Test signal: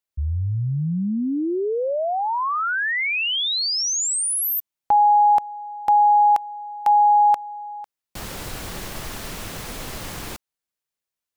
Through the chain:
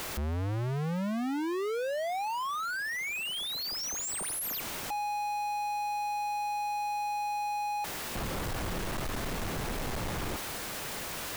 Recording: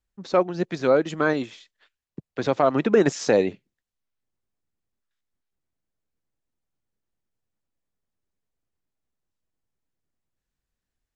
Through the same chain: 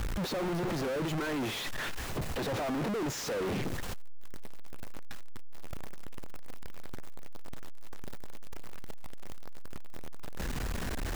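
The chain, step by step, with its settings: one-bit comparator; treble shelf 2.6 kHz -11 dB; peak limiter -31 dBFS

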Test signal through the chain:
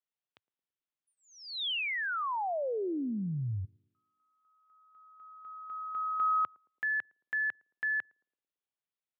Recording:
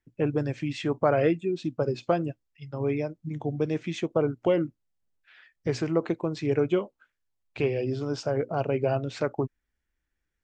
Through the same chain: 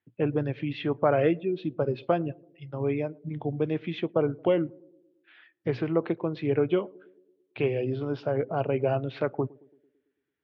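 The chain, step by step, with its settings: elliptic band-pass 100–3500 Hz, stop band 40 dB; band-passed feedback delay 111 ms, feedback 59%, band-pass 330 Hz, level -23 dB

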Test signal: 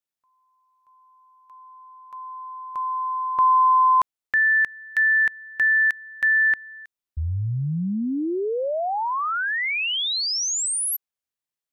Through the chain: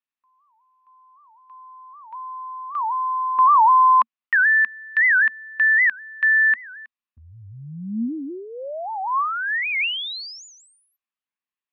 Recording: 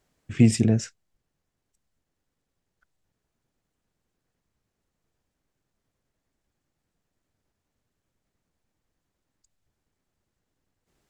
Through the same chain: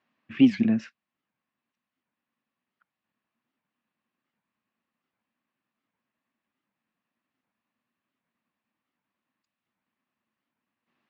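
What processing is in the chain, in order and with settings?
cabinet simulation 210–4200 Hz, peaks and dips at 230 Hz +10 dB, 430 Hz -8 dB, 1.1 kHz +10 dB, 1.8 kHz +6 dB, 2.6 kHz +8 dB; warped record 78 rpm, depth 250 cents; trim -5 dB

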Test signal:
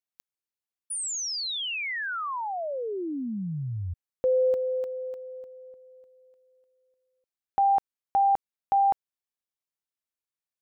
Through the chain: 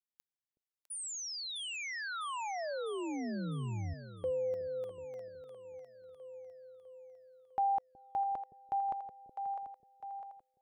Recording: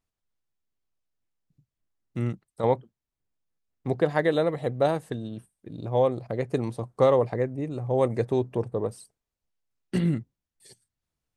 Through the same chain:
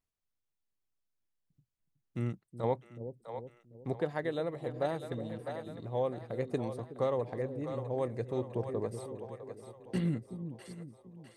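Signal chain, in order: two-band feedback delay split 490 Hz, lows 370 ms, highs 653 ms, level -10.5 dB; gain riding within 3 dB 0.5 s; trim -9 dB

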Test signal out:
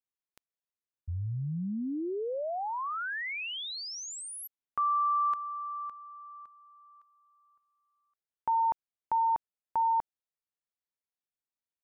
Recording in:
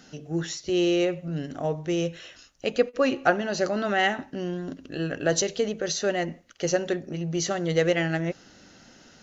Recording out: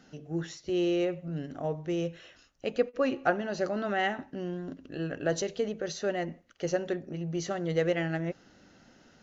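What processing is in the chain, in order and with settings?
treble shelf 3.3 kHz -9 dB; trim -4.5 dB

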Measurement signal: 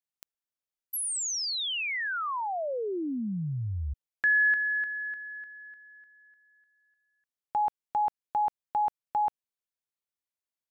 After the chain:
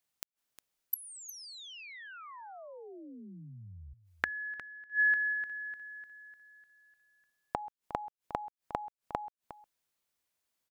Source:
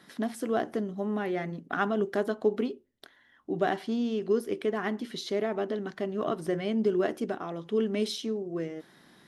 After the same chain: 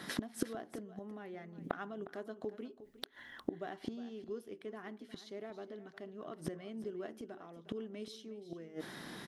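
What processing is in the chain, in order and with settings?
inverted gate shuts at -29 dBFS, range -26 dB; on a send: delay 358 ms -15 dB; on the sum: trim +9.5 dB

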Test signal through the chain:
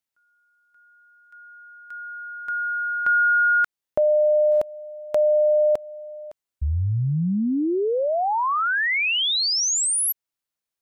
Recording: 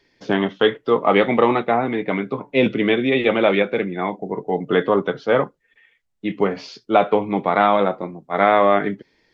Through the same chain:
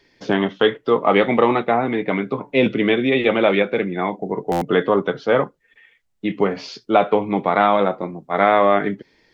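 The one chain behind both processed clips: in parallel at -2.5 dB: compression, threshold -27 dBFS; on the sum: buffer glitch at 4.51 s, samples 512, times 8; trim -1 dB

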